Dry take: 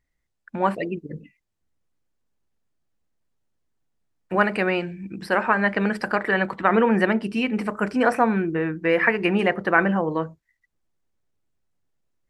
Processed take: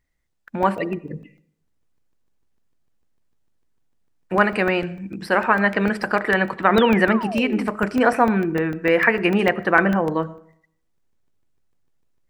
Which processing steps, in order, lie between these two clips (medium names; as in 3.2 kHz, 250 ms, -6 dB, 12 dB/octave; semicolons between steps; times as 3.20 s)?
painted sound fall, 6.76–7.68 s, 220–4000 Hz -32 dBFS; on a send at -19 dB: reverberation RT60 0.65 s, pre-delay 45 ms; on the sum: crackling interface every 0.15 s, samples 64, zero, from 0.33 s; trim +2.5 dB